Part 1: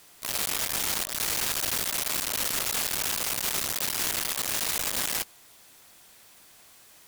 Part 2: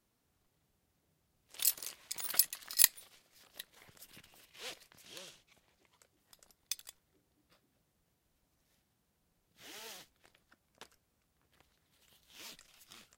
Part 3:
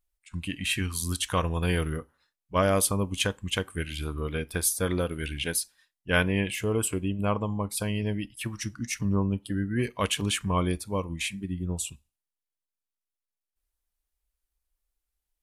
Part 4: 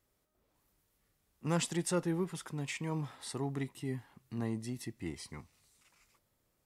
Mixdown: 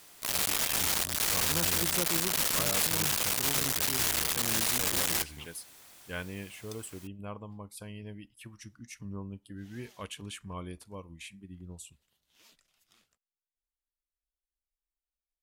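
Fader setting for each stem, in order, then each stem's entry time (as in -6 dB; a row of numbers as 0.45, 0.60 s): -0.5, -10.5, -14.5, -4.0 dB; 0.00, 0.00, 0.00, 0.05 s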